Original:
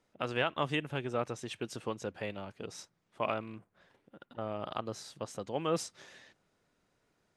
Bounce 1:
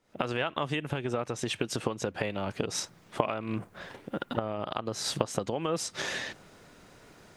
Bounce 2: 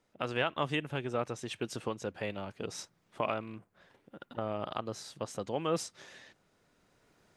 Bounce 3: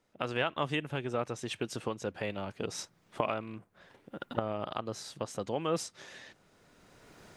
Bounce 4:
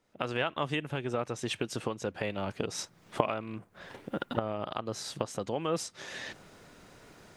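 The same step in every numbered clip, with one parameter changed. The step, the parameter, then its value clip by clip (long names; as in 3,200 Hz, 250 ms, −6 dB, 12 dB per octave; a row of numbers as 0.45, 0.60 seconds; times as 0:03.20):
camcorder AGC, rising by: 88, 5.6, 14, 35 dB per second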